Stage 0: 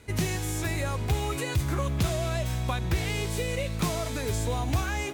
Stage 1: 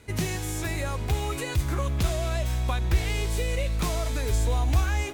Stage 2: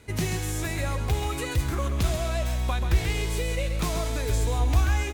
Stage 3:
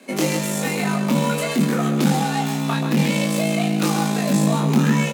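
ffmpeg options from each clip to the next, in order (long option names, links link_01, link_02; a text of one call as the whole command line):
ffmpeg -i in.wav -af "asubboost=boost=8:cutoff=52" out.wav
ffmpeg -i in.wav -af "aecho=1:1:134:0.398" out.wav
ffmpeg -i in.wav -filter_complex "[0:a]aeval=exprs='(tanh(12.6*val(0)+0.65)-tanh(0.65))/12.6':channel_layout=same,asplit=2[link_01][link_02];[link_02]adelay=24,volume=-3dB[link_03];[link_01][link_03]amix=inputs=2:normalize=0,afreqshift=150,volume=8.5dB" out.wav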